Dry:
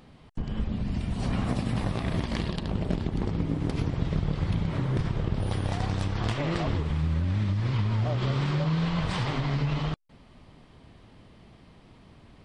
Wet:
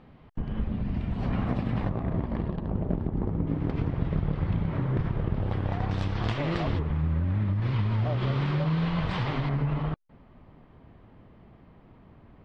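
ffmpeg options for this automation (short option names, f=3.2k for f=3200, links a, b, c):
-af "asetnsamples=n=441:p=0,asendcmd='1.89 lowpass f 1100;3.47 lowpass f 2100;5.91 lowpass f 4400;6.79 lowpass f 1900;7.62 lowpass f 3400;9.49 lowpass f 1700',lowpass=2.3k"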